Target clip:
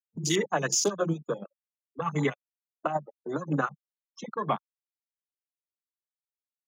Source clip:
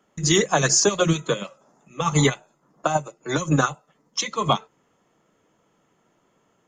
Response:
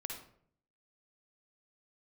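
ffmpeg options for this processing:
-filter_complex "[0:a]afftfilt=real='re*gte(hypot(re,im),0.0501)':imag='im*gte(hypot(re,im),0.0501)':win_size=1024:overlap=0.75,afwtdn=0.0398,highpass=f=150:w=0.5412,highpass=f=150:w=1.3066,acrossover=split=1400[s0][s1];[s0]acompressor=mode=upward:threshold=0.0708:ratio=2.5[s2];[s2][s1]amix=inputs=2:normalize=0,volume=0.447"

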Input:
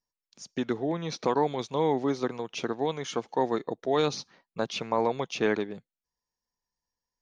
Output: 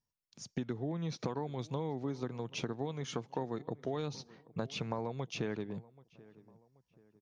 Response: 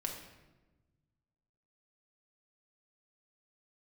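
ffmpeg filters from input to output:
-filter_complex "[0:a]equalizer=f=110:w=0.74:g=14.5,acompressor=threshold=0.0316:ratio=6,asplit=2[s0][s1];[s1]adelay=781,lowpass=f=1700:p=1,volume=0.0891,asplit=2[s2][s3];[s3]adelay=781,lowpass=f=1700:p=1,volume=0.43,asplit=2[s4][s5];[s5]adelay=781,lowpass=f=1700:p=1,volume=0.43[s6];[s2][s4][s6]amix=inputs=3:normalize=0[s7];[s0][s7]amix=inputs=2:normalize=0,volume=0.668"

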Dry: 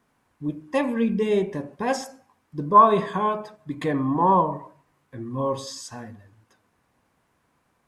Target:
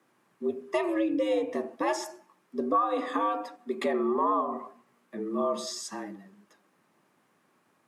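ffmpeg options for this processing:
-filter_complex "[0:a]asettb=1/sr,asplit=3[s0][s1][s2];[s0]atrim=end=2.794[s3];[s1]atrim=start=2.79:end=3.86,asetpts=PTS-STARTPTS,afade=t=in:d=0.004:c=qsin,afade=t=out:st=1.066:d=0.004:c=qsin,highpass=57[s4];[s2]atrim=start=3.856[s5];[s3][s4]acrossfade=d=0.004:c1=hsin:c2=qsin[s6];[s6][s5]acrossfade=d=0.004:c1=qsin:c2=hsin,acompressor=threshold=0.0631:ratio=5,afreqshift=94"

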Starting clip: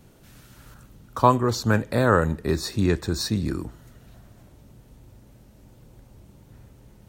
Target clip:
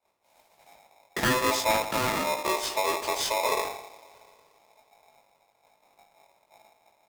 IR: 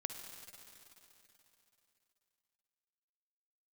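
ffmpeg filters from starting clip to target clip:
-filter_complex "[0:a]agate=range=0.0224:threshold=0.0126:ratio=3:detection=peak,flanger=delay=18:depth=2.6:speed=0.43,alimiter=limit=0.211:level=0:latency=1:release=355,asettb=1/sr,asplit=3[s0][s1][s2];[s0]atrim=end=1.844[s3];[s1]atrim=start=1.84:end=3.43,asetpts=PTS-STARTPTS,afade=t=in:d=0.004:c=qsin,afade=t=out:st=1.586:d=0.004:c=qsin,acompressor=threshold=0.0398:ratio=6[s4];[s2]atrim=start=3.426[s5];[s3][s4]acrossfade=d=0.004:c1=hsin:c2=qsin[s6];[s6][s5]acrossfade=d=0.004:c1=qsin:c2=hsin,asoftclip=type=tanh:threshold=0.075,asplit=2[s7][s8];[s8]adelay=87,lowpass=f=840:p=1,volume=0.282,asplit=2[s9][s10];[s10]adelay=87,lowpass=f=840:p=1,volume=0.53,asplit=2[s11][s12];[s12]adelay=87,lowpass=f=840:p=1,volume=0.53,asplit=2[s13][s14];[s14]adelay=87,lowpass=f=840:p=1,volume=0.53,asplit=2[s15][s16];[s16]adelay=87,lowpass=f=840:p=1,volume=0.53,asplit=2[s17][s18];[s18]adelay=87,lowpass=f=840:p=1,volume=0.53[s19];[s7][s9][s11][s13][s15][s17][s19]amix=inputs=7:normalize=0,asplit=2[s20][s21];[1:a]atrim=start_sample=2205[s22];[s21][s22]afir=irnorm=-1:irlink=0,volume=0.224[s23];[s20][s23]amix=inputs=2:normalize=0,aeval=exprs='val(0)*sgn(sin(2*PI*760*n/s))':c=same,volume=1.5"

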